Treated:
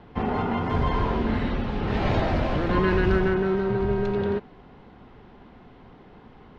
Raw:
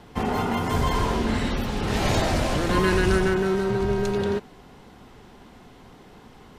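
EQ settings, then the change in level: air absorption 310 m; 0.0 dB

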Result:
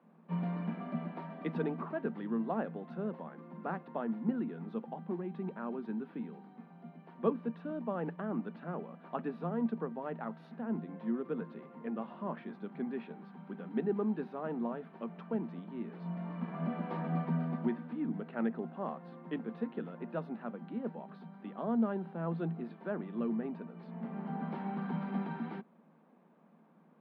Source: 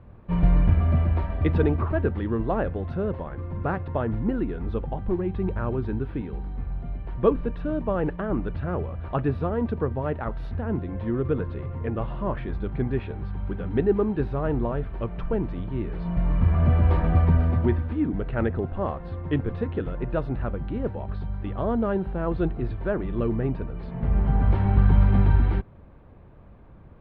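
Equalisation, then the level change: rippled Chebyshev high-pass 160 Hz, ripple 9 dB; bell 580 Hz -9 dB 0.6 oct; -2.5 dB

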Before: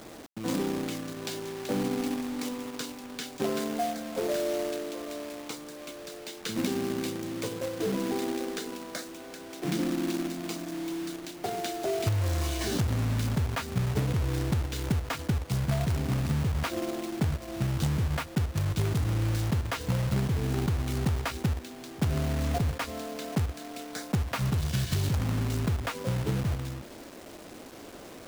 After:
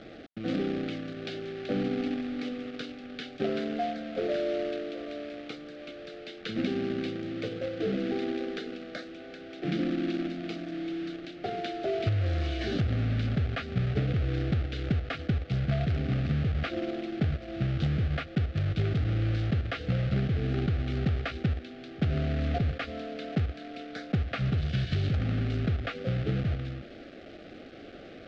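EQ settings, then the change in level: Butterworth band-stop 970 Hz, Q 2.1; LPF 3900 Hz 24 dB/oct; 0.0 dB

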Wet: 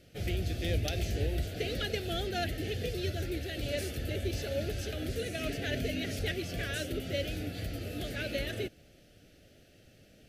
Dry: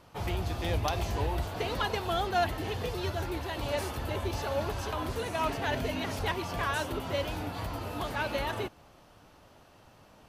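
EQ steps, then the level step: Butterworth band-stop 1000 Hz, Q 0.87; 0.0 dB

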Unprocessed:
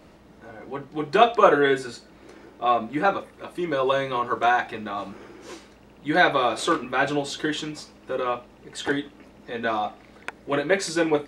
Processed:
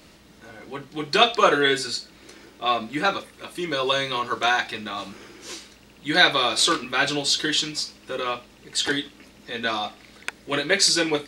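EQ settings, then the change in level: dynamic EQ 4600 Hz, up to +6 dB, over -50 dBFS, Q 3; EQ curve 240 Hz 0 dB, 760 Hz -3 dB, 4100 Hz +11 dB; -1.0 dB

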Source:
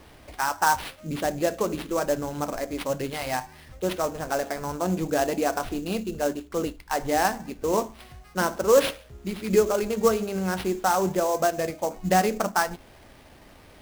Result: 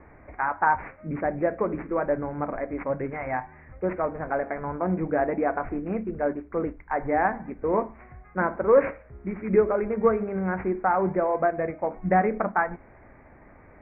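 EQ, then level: steep low-pass 2300 Hz 96 dB/oct; 0.0 dB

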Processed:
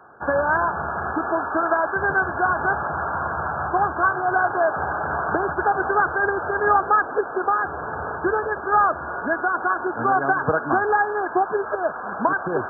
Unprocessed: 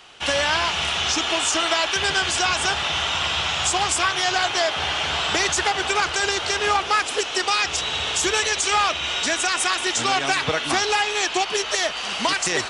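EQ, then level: HPF 88 Hz; brick-wall FIR low-pass 1700 Hz; +3.5 dB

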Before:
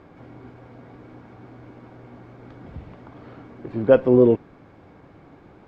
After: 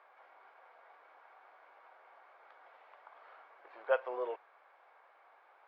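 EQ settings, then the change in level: Bessel high-pass 1100 Hz, order 6; air absorption 160 m; high shelf 2100 Hz -10 dB; 0.0 dB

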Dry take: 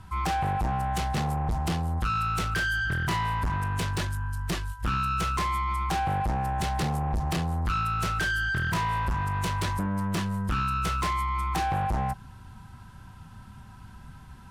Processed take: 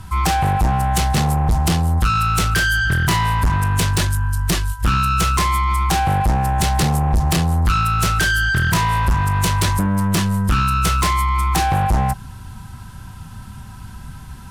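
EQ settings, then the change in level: low shelf 190 Hz +4.5 dB; high shelf 4500 Hz +10 dB; +8.0 dB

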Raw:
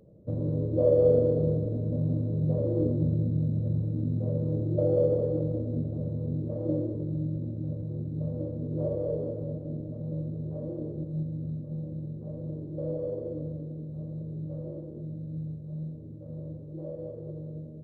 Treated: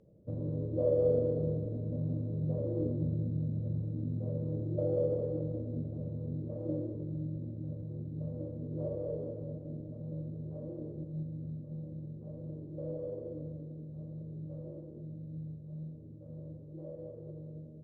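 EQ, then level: air absorption 54 m; -6.5 dB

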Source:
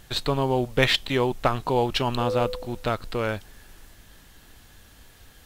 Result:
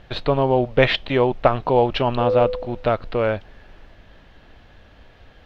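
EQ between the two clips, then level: air absorption 270 m; bell 600 Hz +7 dB 0.72 oct; bell 2600 Hz +2.5 dB; +3.5 dB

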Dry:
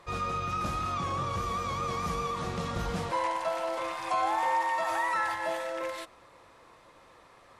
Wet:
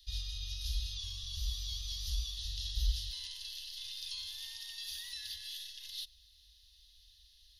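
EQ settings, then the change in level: inverse Chebyshev band-stop 140–1400 Hz, stop band 50 dB; fixed phaser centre 2300 Hz, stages 6; +8.5 dB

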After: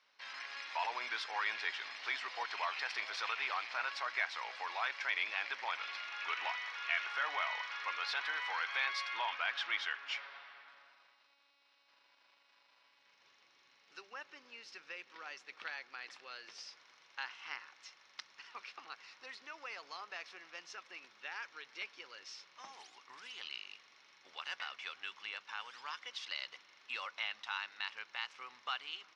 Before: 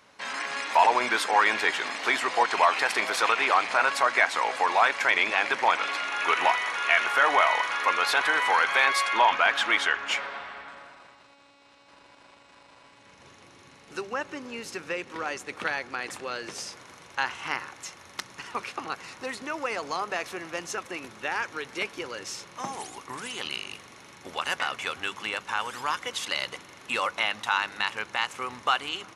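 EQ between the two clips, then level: band-pass 5600 Hz, Q 3.7; air absorption 410 m; +11.0 dB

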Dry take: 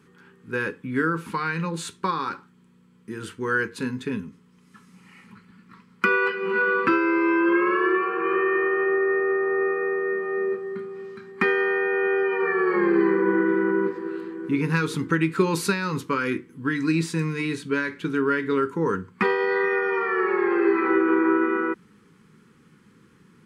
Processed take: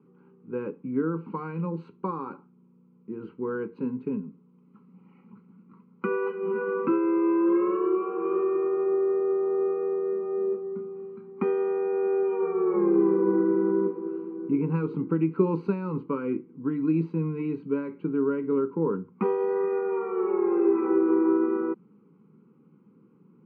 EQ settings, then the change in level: running mean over 25 samples; HPF 150 Hz 24 dB/oct; air absorption 350 m; 0.0 dB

